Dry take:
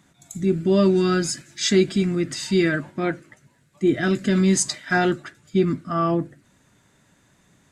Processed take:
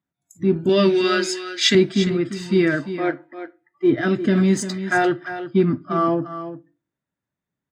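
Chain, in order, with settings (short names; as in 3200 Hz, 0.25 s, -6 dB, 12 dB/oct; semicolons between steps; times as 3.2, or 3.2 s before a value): bell 8100 Hz -10.5 dB 2.2 oct; in parallel at -8 dB: crossover distortion -34 dBFS; 0.69–1.75 on the sum: weighting filter D; spectral noise reduction 26 dB; HPF 49 Hz; echo 0.347 s -11.5 dB; on a send at -17 dB: reverb RT60 0.40 s, pre-delay 3 ms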